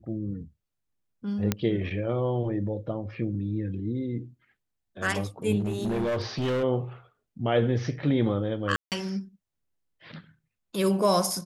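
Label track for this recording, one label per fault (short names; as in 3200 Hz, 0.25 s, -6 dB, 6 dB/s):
1.520000	1.520000	pop -9 dBFS
5.590000	6.640000	clipped -24 dBFS
8.760000	8.920000	gap 0.158 s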